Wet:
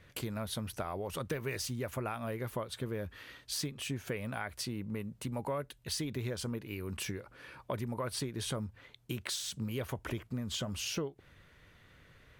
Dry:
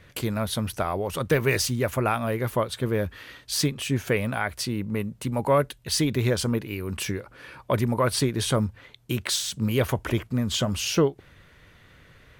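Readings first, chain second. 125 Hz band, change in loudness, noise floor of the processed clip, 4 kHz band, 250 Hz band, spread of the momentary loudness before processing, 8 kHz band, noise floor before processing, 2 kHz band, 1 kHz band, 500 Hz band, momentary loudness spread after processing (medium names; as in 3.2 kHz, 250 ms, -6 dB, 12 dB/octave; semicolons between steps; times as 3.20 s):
-12.5 dB, -12.0 dB, -62 dBFS, -10.5 dB, -12.5 dB, 7 LU, -10.5 dB, -55 dBFS, -12.5 dB, -13.0 dB, -13.5 dB, 5 LU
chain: compression 4:1, threshold -27 dBFS, peak gain reduction 10 dB; trim -7 dB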